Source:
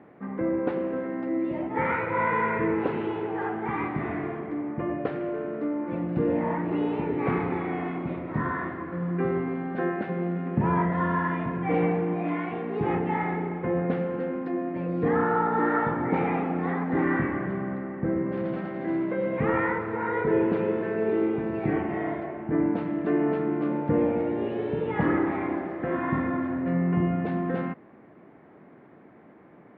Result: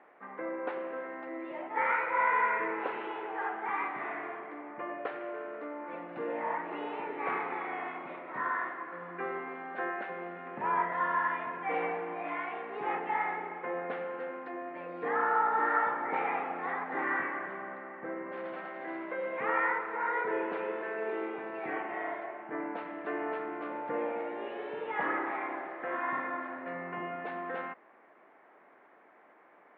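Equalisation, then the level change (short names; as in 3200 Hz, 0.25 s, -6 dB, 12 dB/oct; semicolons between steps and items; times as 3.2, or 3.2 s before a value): BPF 750–3200 Hz; 0.0 dB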